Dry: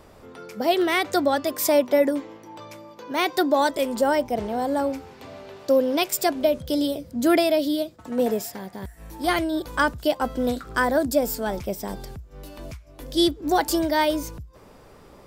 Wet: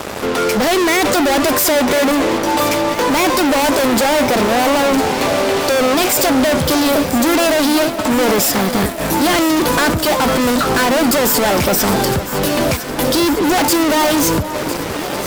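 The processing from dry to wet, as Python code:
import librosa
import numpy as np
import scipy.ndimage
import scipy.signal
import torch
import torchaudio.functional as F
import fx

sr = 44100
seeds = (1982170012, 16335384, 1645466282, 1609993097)

p1 = scipy.signal.sosfilt(scipy.signal.bessel(2, 170.0, 'highpass', norm='mag', fs=sr, output='sos'), x)
p2 = fx.fuzz(p1, sr, gain_db=47.0, gate_db=-51.0)
y = p2 + fx.echo_alternate(p2, sr, ms=503, hz=1500.0, feedback_pct=82, wet_db=-10.5, dry=0)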